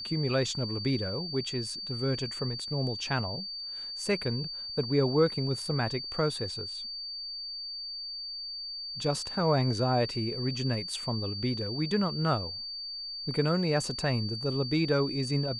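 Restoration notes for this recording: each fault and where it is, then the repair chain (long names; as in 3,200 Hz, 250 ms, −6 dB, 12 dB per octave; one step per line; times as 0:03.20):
whistle 4,600 Hz −36 dBFS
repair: notch filter 4,600 Hz, Q 30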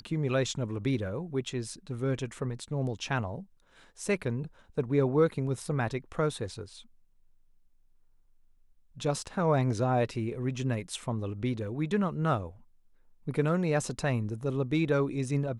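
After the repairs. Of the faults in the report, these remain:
none of them is left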